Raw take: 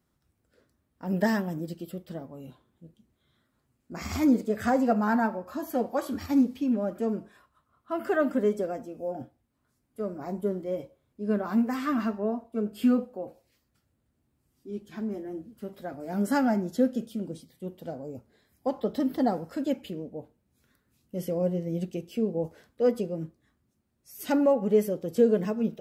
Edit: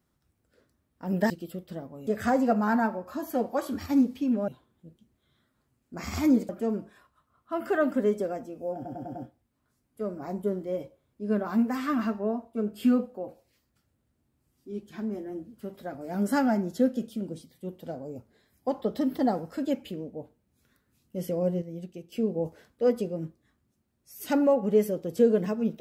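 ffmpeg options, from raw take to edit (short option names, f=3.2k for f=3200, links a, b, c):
-filter_complex "[0:a]asplit=11[a][b][c][d][e][f][g][h][i][j][k];[a]atrim=end=1.302[l];[b]atrim=start=1.688:end=2.462[m];[c]atrim=start=4.468:end=6.882[n];[d]atrim=start=2.458:end=4.472[o];[e]atrim=start=6.878:end=9.242[p];[f]atrim=start=9.138:end=9.242[q];[g]atrim=start=9.138:end=9.242[r];[h]atrim=start=9.138:end=9.242[s];[i]atrim=start=9.138:end=21.612[t];[j]atrim=start=21.608:end=22.112,asetpts=PTS-STARTPTS,volume=-8dB[u];[k]atrim=start=22.108[v];[l][m]acrossfade=d=0.004:c1=hsin:c2=hsin[w];[w][n]acrossfade=d=0.004:c1=hsin:c2=hsin[x];[x][o]acrossfade=d=0.004:c1=hsin:c2=hsin[y];[y][p]acrossfade=d=0.004:c1=hsin:c2=hsin[z];[z][q]acrossfade=d=0.004:c1=hsin:c2=hsin[aa];[aa][r]acrossfade=d=0.004:c1=hsin:c2=hsin[ab];[ab][s]acrossfade=d=0.004:c1=hsin:c2=hsin[ac];[ac][t]acrossfade=d=0.004:c1=hsin:c2=hsin[ad];[ad][u]acrossfade=d=0.004:c1=hsin:c2=hsin[ae];[ae][v]acrossfade=d=0.004:c1=hsin:c2=hsin"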